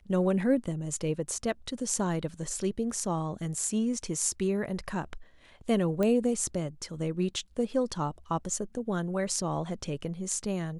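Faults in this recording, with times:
6.03 s: pop -17 dBFS

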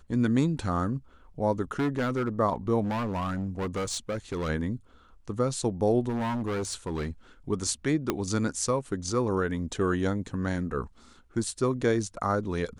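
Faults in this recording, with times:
1.79–2.29 s: clipped -23 dBFS
2.83–4.50 s: clipped -27 dBFS
6.09–7.11 s: clipped -27 dBFS
8.10 s: pop -11 dBFS

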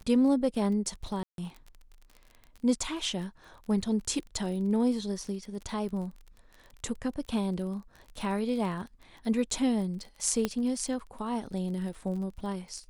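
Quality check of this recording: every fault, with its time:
crackle 34 per s -39 dBFS
1.23–1.38 s: dropout 152 ms
10.45 s: pop -14 dBFS

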